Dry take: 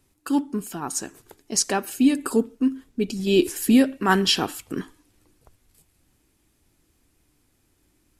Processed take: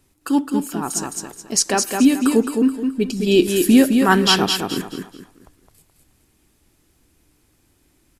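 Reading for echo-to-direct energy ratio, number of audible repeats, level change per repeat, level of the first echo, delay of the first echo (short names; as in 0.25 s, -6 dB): -4.5 dB, 3, -10.0 dB, -5.0 dB, 0.213 s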